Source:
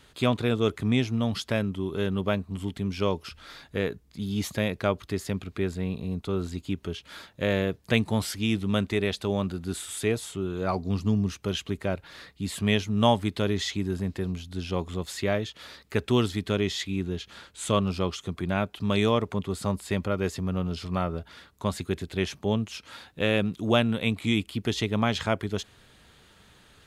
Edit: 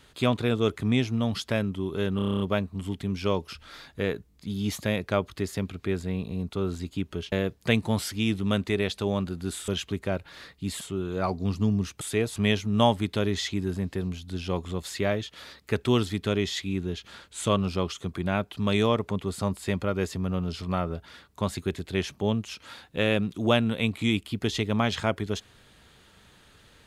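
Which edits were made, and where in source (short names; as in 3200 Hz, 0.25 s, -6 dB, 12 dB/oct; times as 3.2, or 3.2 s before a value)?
2.16 stutter 0.03 s, 9 plays
4.05 stutter 0.02 s, 3 plays
7.04–7.55 cut
9.91–10.26 swap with 11.46–12.59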